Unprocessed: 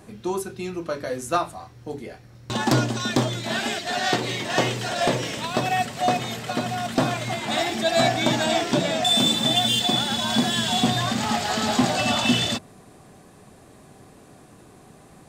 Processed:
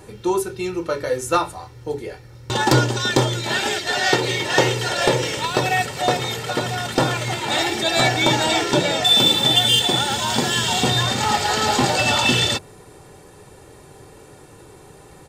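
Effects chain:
comb filter 2.2 ms, depth 63%
level +4 dB

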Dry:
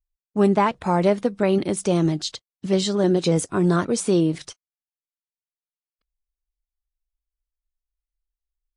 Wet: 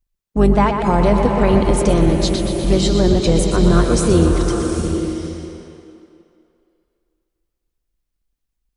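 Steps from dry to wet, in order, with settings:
sub-octave generator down 2 octaves, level +1 dB
tape delay 123 ms, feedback 73%, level −7 dB, low-pass 5,800 Hz
in parallel at +0.5 dB: downward compressor, threshold −28 dBFS, peak gain reduction 16 dB
on the sum: slow-attack reverb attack 780 ms, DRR 4.5 dB
level +1 dB

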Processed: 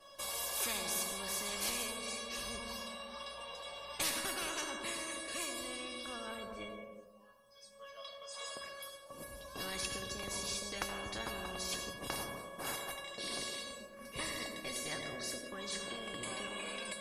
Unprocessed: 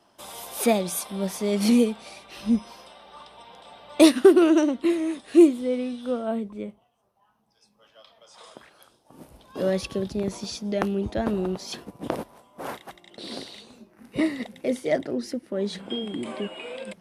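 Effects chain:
tuned comb filter 560 Hz, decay 0.24 s, harmonics all, mix 100%
on a send at −8 dB: convolution reverb RT60 1.2 s, pre-delay 68 ms
on the sum: every bin compressed towards the loudest bin 10 to 1
level +3 dB

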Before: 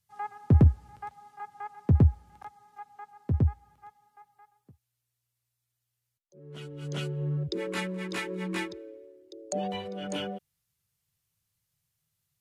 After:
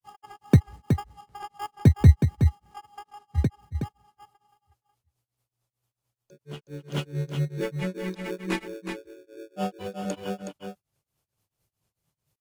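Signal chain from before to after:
in parallel at −5 dB: decimation without filtering 22×
on the sum: granular cloud 168 ms, grains 4.5 per second, spray 52 ms, pitch spread up and down by 0 semitones
single-tap delay 369 ms −6.5 dB
level +3.5 dB

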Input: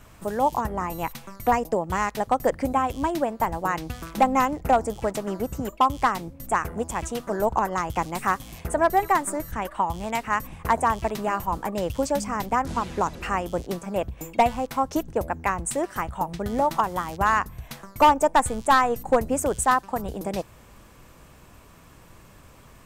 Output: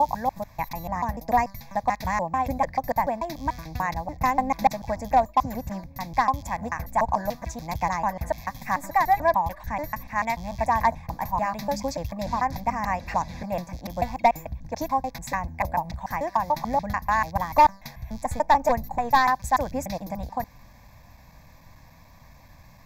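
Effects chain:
slices reordered back to front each 146 ms, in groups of 4
phaser with its sweep stopped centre 2,000 Hz, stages 8
level +1.5 dB

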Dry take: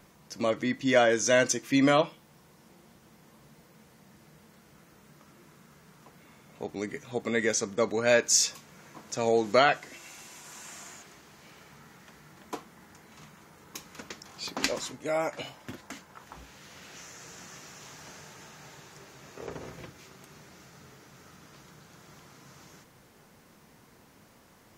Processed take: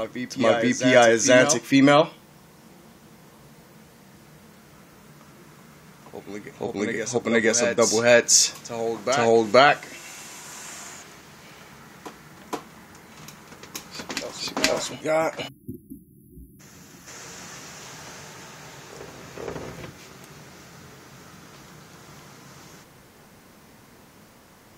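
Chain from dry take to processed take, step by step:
time-frequency box erased 0:15.48–0:17.07, 370–10,000 Hz
backwards echo 473 ms −9 dB
level +6.5 dB

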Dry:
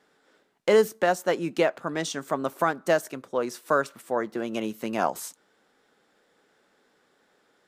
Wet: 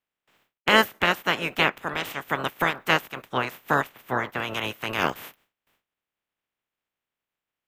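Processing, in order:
ceiling on every frequency bin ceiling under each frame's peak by 29 dB
noise gate with hold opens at −53 dBFS
flat-topped bell 6,700 Hz −13 dB
level +1.5 dB

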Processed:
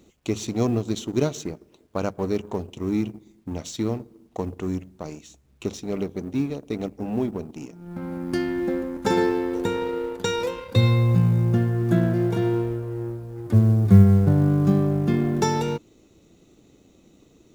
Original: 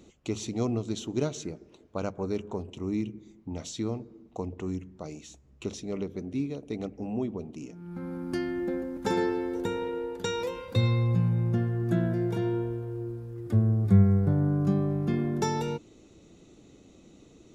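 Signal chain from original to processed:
mu-law and A-law mismatch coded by A
level +7 dB

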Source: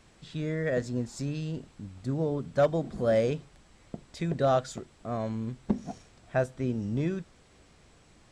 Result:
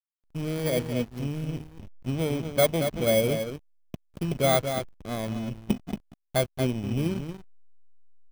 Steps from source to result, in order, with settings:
samples in bit-reversed order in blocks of 16 samples
single-tap delay 229 ms −7 dB
slack as between gear wheels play −30.5 dBFS
level +2.5 dB

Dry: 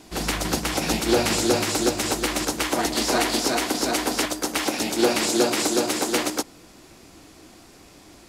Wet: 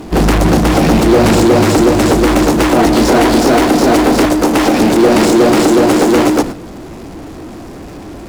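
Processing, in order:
tilt shelving filter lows +9 dB, about 1,400 Hz
noise gate −30 dBFS, range −17 dB
in parallel at −1 dB: compressor whose output falls as the input rises −18 dBFS
on the sum: power curve on the samples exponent 0.5
level −1.5 dB

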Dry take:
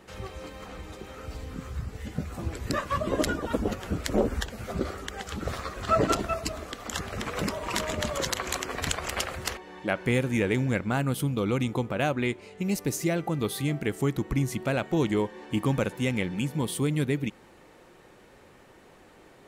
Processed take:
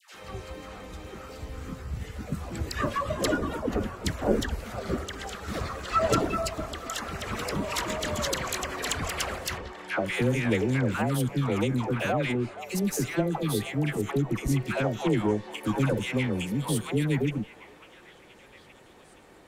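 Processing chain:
harmonic generator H 8 −28 dB, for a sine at −9 dBFS
all-pass dispersion lows, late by 148 ms, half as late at 780 Hz
on a send: echo through a band-pass that steps 472 ms, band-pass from 890 Hz, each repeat 0.7 octaves, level −11 dB
0:03.15–0:04.22: on the sum: multiband upward and downward expander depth 40%

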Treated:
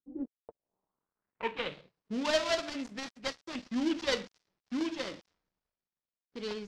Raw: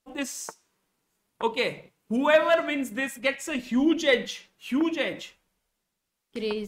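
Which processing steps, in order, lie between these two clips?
gap after every zero crossing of 0.23 ms
low-pass filter sweep 290 Hz → 5,300 Hz, 0:00.09–0:02.00
one half of a high-frequency compander decoder only
level −8.5 dB

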